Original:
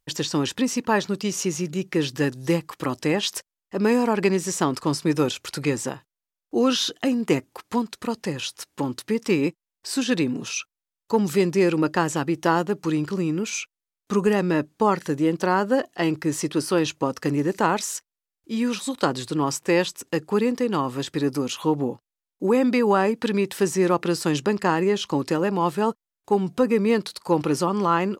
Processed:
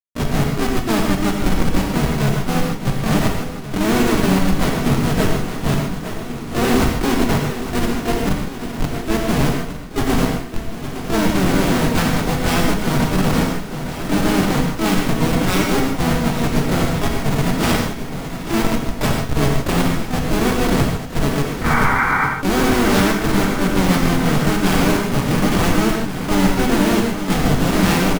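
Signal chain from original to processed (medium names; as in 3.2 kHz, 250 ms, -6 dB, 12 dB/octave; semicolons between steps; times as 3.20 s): sorted samples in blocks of 16 samples; peaking EQ 160 Hz +12.5 dB 0.66 oct; hum notches 60/120/180/240/300 Hz; comb 4.6 ms, depth 77%; dynamic bell 4.5 kHz, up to +7 dB, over -38 dBFS, Q 0.9; Schmitt trigger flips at -13.5 dBFS; painted sound noise, 21.64–22.27 s, 750–1600 Hz -21 dBFS; harmony voices +7 st -4 dB; on a send: shuffle delay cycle 1437 ms, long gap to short 1.5:1, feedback 52%, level -11 dB; on the sum: gated-style reverb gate 180 ms flat, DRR 0 dB; trim -1 dB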